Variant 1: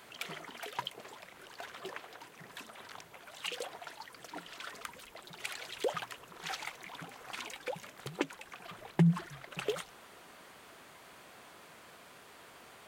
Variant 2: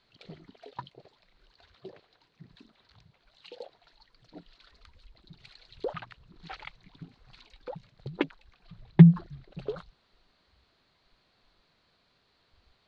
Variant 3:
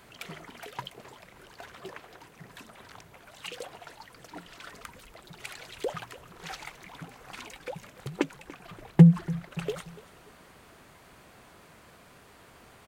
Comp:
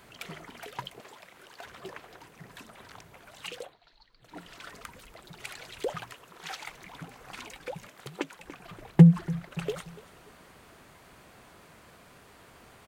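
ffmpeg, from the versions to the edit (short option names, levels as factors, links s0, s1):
-filter_complex "[0:a]asplit=3[s0][s1][s2];[2:a]asplit=5[s3][s4][s5][s6][s7];[s3]atrim=end=1.002[s8];[s0]atrim=start=0.998:end=1.652[s9];[s4]atrim=start=1.648:end=3.76[s10];[1:a]atrim=start=3.52:end=4.43[s11];[s5]atrim=start=4.19:end=6.132[s12];[s1]atrim=start=6.128:end=6.682[s13];[s6]atrim=start=6.678:end=7.882[s14];[s2]atrim=start=7.878:end=8.402[s15];[s7]atrim=start=8.398[s16];[s8][s9]acrossfade=d=0.004:c1=hsin:c2=hsin[s17];[s17][s10]acrossfade=d=0.004:c1=hsin:c2=hsin[s18];[s18][s11]acrossfade=d=0.24:c1=tri:c2=tri[s19];[s19][s12]acrossfade=d=0.24:c1=tri:c2=tri[s20];[s20][s13]acrossfade=d=0.004:c1=hsin:c2=hsin[s21];[s21][s14]acrossfade=d=0.004:c1=hsin:c2=hsin[s22];[s22][s15]acrossfade=d=0.004:c1=hsin:c2=hsin[s23];[s23][s16]acrossfade=d=0.004:c1=hsin:c2=hsin"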